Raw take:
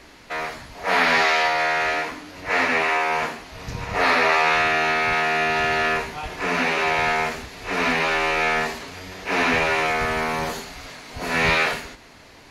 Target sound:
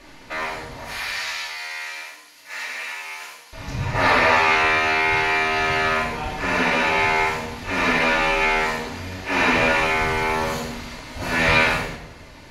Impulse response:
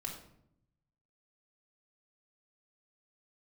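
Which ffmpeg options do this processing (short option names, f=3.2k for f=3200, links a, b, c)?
-filter_complex "[0:a]asettb=1/sr,asplit=3[a][b][c];[a]atrim=end=0.844[d];[b]atrim=start=0.84:end=3.53,asetpts=PTS-STARTPTS,afade=t=in:d=0.004:c=qsin,afade=t=out:st=2.686:d=0.004:c=qsin,aderivative[e];[c]atrim=start=3.526[f];[d][e]acrossfade=d=0.004:c1=hsin:c2=qsin[g];[g][f]acrossfade=d=0.004:c1=qsin:c2=hsin[h];[1:a]atrim=start_sample=2205,asetrate=33957,aresample=44100[i];[h][i]afir=irnorm=-1:irlink=0,volume=1dB"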